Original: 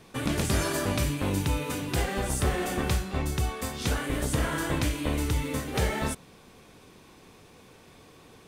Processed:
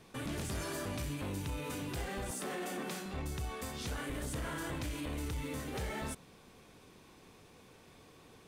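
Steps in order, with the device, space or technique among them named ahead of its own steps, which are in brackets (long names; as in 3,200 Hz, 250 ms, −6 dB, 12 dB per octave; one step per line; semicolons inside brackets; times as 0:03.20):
0:02.31–0:03.06: Butterworth high-pass 170 Hz 48 dB per octave
soft clipper into limiter (soft clipping −20.5 dBFS, distortion −18 dB; brickwall limiter −26.5 dBFS, peak gain reduction 5.5 dB)
level −5.5 dB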